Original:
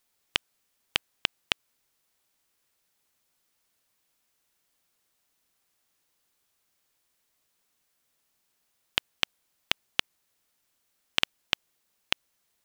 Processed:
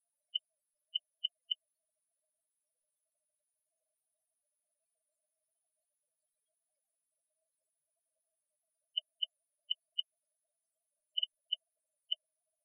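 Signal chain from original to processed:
thirty-one-band graphic EQ 630 Hz +8 dB, 1,250 Hz −12 dB, 10,000 Hz +6 dB
spectral peaks only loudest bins 8

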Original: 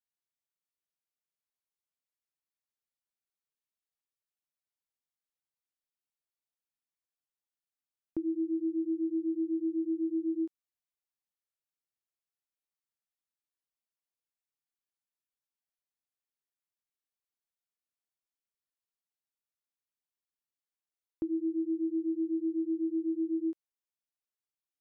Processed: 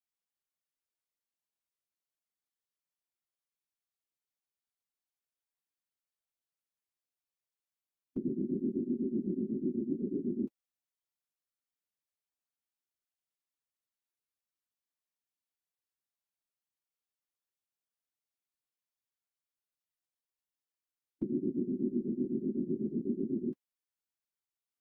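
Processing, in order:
notch comb filter 210 Hz
random phases in short frames
formants moved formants −3 semitones
level −1.5 dB

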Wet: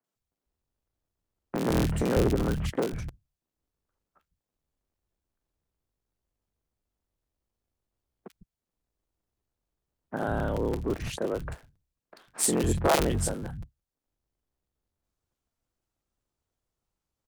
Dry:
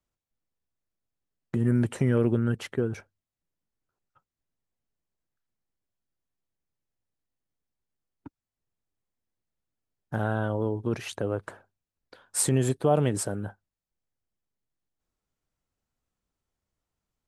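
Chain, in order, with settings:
sub-harmonics by changed cycles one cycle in 3, inverted
three-band delay without the direct sound mids, highs, lows 40/150 ms, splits 160/2,000 Hz
regular buffer underruns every 0.17 s, samples 256, repeat, from 0:00.87

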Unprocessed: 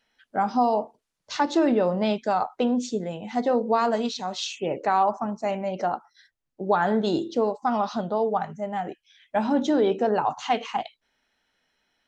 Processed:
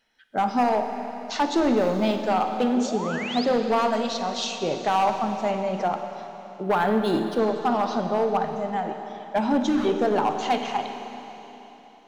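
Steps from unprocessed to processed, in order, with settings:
0:01.77–0:02.19: mu-law and A-law mismatch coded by A
hard clipping −17.5 dBFS, distortion −16 dB
0:02.75–0:03.45: sound drawn into the spectrogram rise 340–5,300 Hz −35 dBFS
0:03.80–0:04.20: low-shelf EQ 200 Hz −9.5 dB
0:09.61–0:09.85: time-frequency box erased 380–1,000 Hz
convolution reverb RT60 3.7 s, pre-delay 41 ms, DRR 6 dB
0:06.63–0:07.39: linearly interpolated sample-rate reduction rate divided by 3×
level +1 dB

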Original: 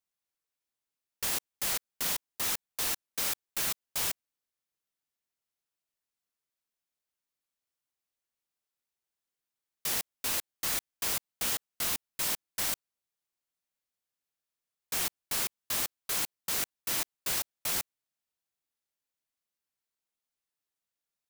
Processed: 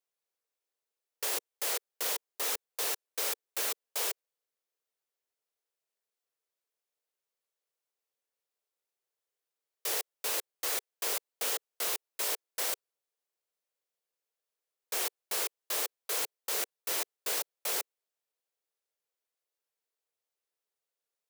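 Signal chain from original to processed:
four-pole ladder high-pass 390 Hz, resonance 55%
level +8.5 dB

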